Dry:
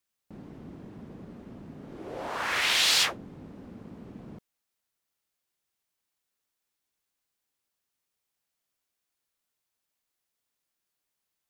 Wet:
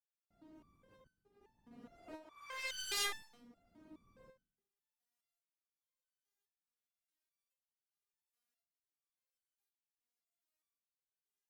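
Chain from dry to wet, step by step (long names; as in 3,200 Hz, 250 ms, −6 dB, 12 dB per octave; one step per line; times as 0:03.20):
0:00.75–0:01.71: compressor whose output falls as the input rises −47 dBFS, ratio −0.5
shaped tremolo saw up 0.93 Hz, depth 95%
asymmetric clip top −35.5 dBFS
on a send at −19 dB: convolution reverb RT60 0.75 s, pre-delay 102 ms
on the sum: step-sequenced resonator 4.8 Hz 240–1,500 Hz
level +7.5 dB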